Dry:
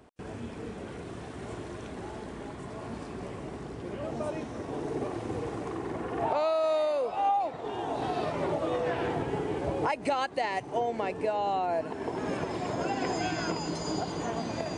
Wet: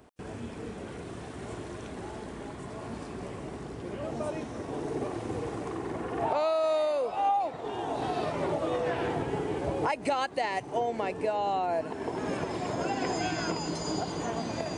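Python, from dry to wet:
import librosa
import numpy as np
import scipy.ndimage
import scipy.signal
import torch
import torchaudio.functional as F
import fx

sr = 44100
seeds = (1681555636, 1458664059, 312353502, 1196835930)

y = fx.high_shelf(x, sr, hz=8700.0, db=5.5)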